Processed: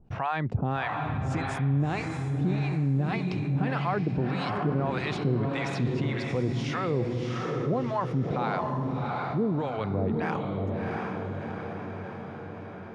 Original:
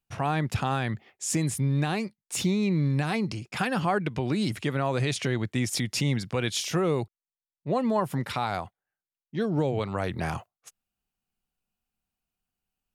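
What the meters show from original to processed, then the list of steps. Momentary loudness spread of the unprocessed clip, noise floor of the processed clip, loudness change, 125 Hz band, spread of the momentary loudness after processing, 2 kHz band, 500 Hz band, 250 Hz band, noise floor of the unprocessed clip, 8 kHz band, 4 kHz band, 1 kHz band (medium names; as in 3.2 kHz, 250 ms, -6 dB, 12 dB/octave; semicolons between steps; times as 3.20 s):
7 LU, -40 dBFS, -1.0 dB, +1.5 dB, 8 LU, -1.0 dB, 0.0 dB, -0.5 dB, under -85 dBFS, under -15 dB, -7.5 dB, +0.5 dB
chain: harmonic tremolo 1.7 Hz, depth 100%, crossover 700 Hz; tape spacing loss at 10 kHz 30 dB; echo that smears into a reverb 697 ms, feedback 42%, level -4 dB; level flattener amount 50%; trim +1 dB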